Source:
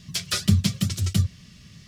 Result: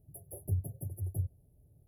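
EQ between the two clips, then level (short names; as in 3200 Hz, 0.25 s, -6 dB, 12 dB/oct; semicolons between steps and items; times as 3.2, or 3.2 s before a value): brick-wall FIR band-stop 970–10000 Hz; fixed phaser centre 480 Hz, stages 4; -8.5 dB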